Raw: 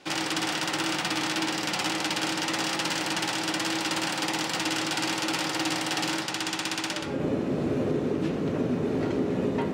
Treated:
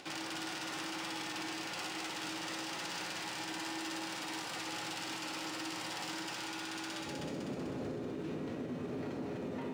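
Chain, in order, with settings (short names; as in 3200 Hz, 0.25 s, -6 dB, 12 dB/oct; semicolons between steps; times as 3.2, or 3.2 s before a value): notches 60/120/180/240/300/360/420/480/540/600 Hz; on a send: split-band echo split 1000 Hz, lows 0.108 s, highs 0.252 s, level -5.5 dB; on the sum: limiter -23 dBFS, peak gain reduction 9 dB; resonator 120 Hz, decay 1.5 s, mix 80%; upward compressor, threshold -49 dBFS; gain +3.5 dB; IMA ADPCM 176 kbps 44100 Hz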